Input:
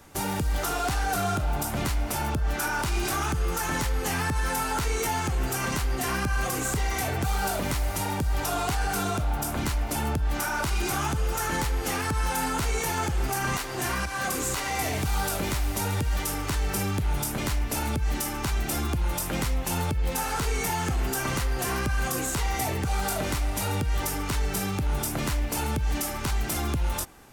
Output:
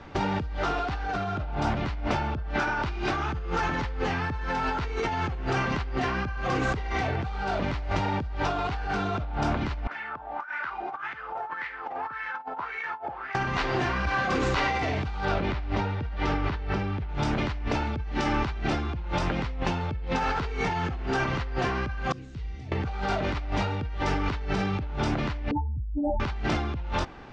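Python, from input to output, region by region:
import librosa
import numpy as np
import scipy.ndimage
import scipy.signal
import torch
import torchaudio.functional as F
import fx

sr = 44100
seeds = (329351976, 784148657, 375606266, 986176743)

y = fx.chain(x, sr, fx.wah_lfo(hz=1.8, low_hz=700.0, high_hz=2000.0, q=5.2),
    fx.over_compress(threshold_db=-40.0, ratio=-0.5), at=(9.87, 13.35))
y = fx.chain(y, sr, fx.air_absorb(metres=110.0),
    fx.echo_single(ms=733, db=-16.5), at=(15.25, 17.09))
y = fx.chain(y, sr, fx.highpass(hz=77.0, slope=12),
    fx.tone_stack(knobs='10-0-1'), at=(22.12, 22.72))
y = fx.chain(y, sr, fx.spec_expand(power=3.7),
    fx.brickwall_bandstop(low_hz=900.0, high_hz=7900.0),
    fx.air_absorb(metres=100.0), at=(25.51, 26.2))
y = scipy.signal.sosfilt(scipy.signal.bessel(6, 3000.0, 'lowpass', norm='mag', fs=sr, output='sos'), y)
y = fx.over_compress(y, sr, threshold_db=-32.0, ratio=-1.0)
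y = y * 10.0 ** (3.5 / 20.0)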